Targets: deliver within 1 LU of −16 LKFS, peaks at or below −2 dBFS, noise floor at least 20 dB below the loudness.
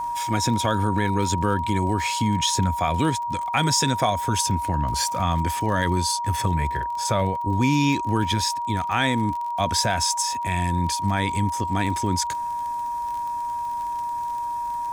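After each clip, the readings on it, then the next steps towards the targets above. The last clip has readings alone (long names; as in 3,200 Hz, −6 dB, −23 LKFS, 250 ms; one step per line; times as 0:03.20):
crackle rate 33 per second; interfering tone 950 Hz; level of the tone −25 dBFS; integrated loudness −23.5 LKFS; sample peak −7.0 dBFS; target loudness −16.0 LKFS
→ click removal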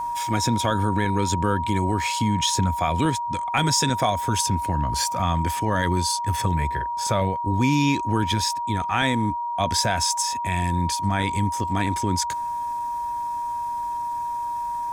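crackle rate 0.20 per second; interfering tone 950 Hz; level of the tone −25 dBFS
→ notch filter 950 Hz, Q 30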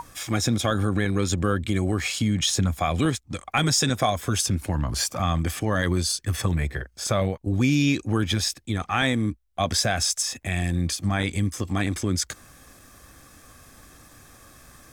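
interfering tone none found; integrated loudness −24.5 LKFS; sample peak −7.5 dBFS; target loudness −16.0 LKFS
→ level +8.5 dB
brickwall limiter −2 dBFS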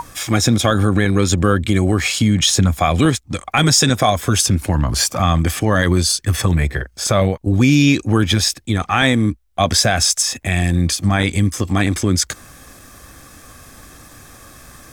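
integrated loudness −16.0 LKFS; sample peak −2.0 dBFS; background noise floor −46 dBFS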